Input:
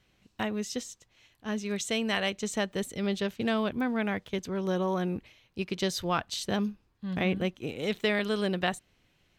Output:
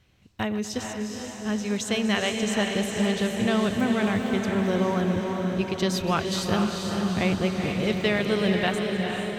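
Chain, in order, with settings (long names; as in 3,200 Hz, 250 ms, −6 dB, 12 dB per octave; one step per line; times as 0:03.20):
feedback delay that plays each chunk backwards 123 ms, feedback 56%, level −14 dB
parametric band 90 Hz +9 dB 1.2 octaves
on a send: feedback delay with all-pass diffusion 455 ms, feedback 63%, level −4 dB
on the sum: level +2.5 dB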